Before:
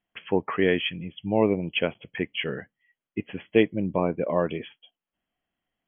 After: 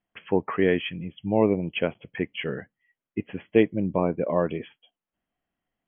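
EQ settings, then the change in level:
high-frequency loss of the air 340 metres
+1.5 dB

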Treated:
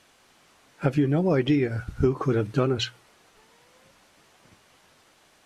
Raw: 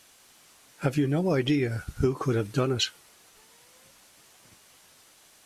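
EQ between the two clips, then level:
low-pass filter 2,200 Hz 6 dB per octave
mains-hum notches 60/120 Hz
+3.0 dB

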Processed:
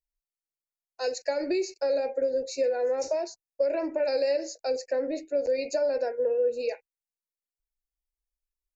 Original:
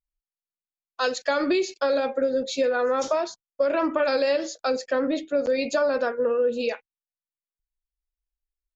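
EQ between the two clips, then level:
Butterworth band-reject 3,300 Hz, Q 2
phaser with its sweep stopped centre 500 Hz, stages 4
−2.5 dB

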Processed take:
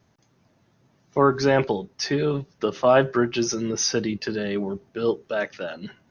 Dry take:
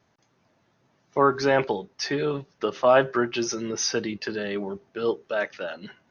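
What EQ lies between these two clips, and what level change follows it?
low-shelf EQ 320 Hz +10 dB
high-shelf EQ 4,700 Hz +7 dB
−1.5 dB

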